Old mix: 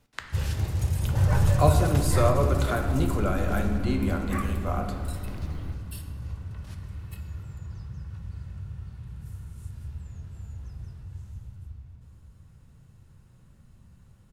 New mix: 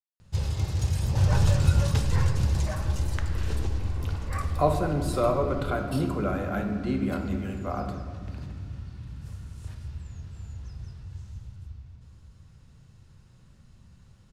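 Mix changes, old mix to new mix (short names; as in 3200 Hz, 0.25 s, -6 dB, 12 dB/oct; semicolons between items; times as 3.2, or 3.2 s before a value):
speech: entry +3.00 s; first sound: add bell 5200 Hz +14 dB 2 oct; master: add high shelf 3400 Hz -10.5 dB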